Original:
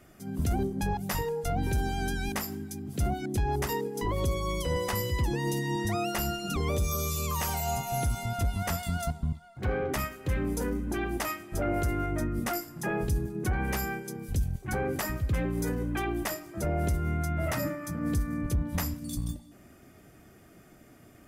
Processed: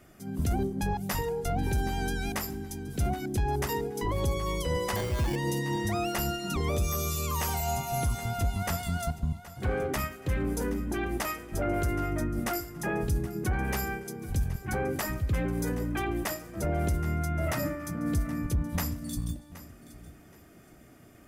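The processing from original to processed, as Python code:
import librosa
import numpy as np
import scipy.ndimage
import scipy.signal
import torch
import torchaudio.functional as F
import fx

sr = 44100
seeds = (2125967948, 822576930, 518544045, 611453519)

p1 = fx.sample_hold(x, sr, seeds[0], rate_hz=2600.0, jitter_pct=0, at=(4.96, 5.36))
y = p1 + fx.echo_feedback(p1, sr, ms=773, feedback_pct=25, wet_db=-16.5, dry=0)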